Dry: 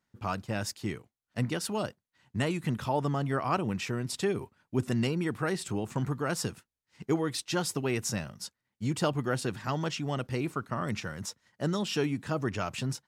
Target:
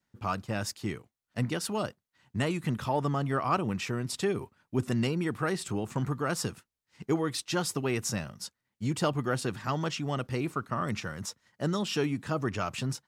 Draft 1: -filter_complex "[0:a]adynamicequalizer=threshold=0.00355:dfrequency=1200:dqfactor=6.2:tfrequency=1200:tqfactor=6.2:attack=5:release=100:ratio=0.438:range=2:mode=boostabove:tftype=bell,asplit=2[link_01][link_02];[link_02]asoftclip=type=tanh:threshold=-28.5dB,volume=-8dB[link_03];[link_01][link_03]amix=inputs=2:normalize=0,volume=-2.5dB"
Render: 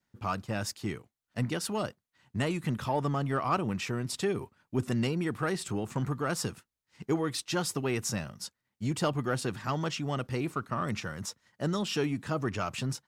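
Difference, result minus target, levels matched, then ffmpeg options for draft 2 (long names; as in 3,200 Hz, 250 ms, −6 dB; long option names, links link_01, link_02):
soft clipping: distortion +11 dB
-filter_complex "[0:a]adynamicequalizer=threshold=0.00355:dfrequency=1200:dqfactor=6.2:tfrequency=1200:tqfactor=6.2:attack=5:release=100:ratio=0.438:range=2:mode=boostabove:tftype=bell,asplit=2[link_01][link_02];[link_02]asoftclip=type=tanh:threshold=-19dB,volume=-8dB[link_03];[link_01][link_03]amix=inputs=2:normalize=0,volume=-2.5dB"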